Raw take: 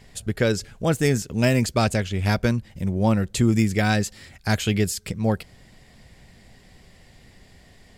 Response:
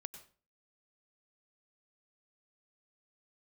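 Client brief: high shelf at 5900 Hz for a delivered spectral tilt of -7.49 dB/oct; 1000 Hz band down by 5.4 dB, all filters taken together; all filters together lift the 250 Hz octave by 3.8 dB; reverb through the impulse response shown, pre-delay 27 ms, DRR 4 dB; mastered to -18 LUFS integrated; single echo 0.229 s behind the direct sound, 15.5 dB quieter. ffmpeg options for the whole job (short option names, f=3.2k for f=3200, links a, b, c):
-filter_complex "[0:a]equalizer=f=250:t=o:g=5,equalizer=f=1k:t=o:g=-8.5,highshelf=f=5.9k:g=-7.5,aecho=1:1:229:0.168,asplit=2[a][b];[1:a]atrim=start_sample=2205,adelay=27[c];[b][c]afir=irnorm=-1:irlink=0,volume=0dB[d];[a][d]amix=inputs=2:normalize=0,volume=1.5dB"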